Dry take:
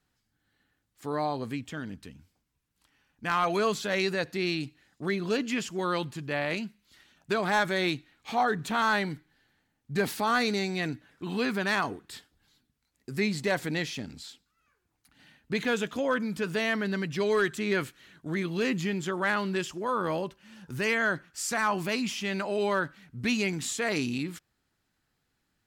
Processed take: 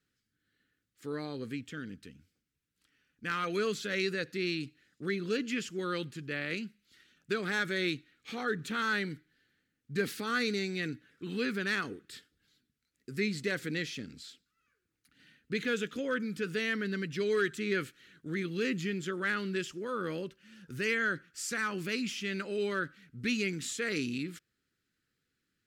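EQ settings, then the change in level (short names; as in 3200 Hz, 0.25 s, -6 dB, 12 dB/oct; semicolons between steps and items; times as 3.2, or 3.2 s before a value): low shelf 77 Hz -10.5 dB; band shelf 810 Hz -15.5 dB 1 oct; high shelf 7800 Hz -4.5 dB; -3.0 dB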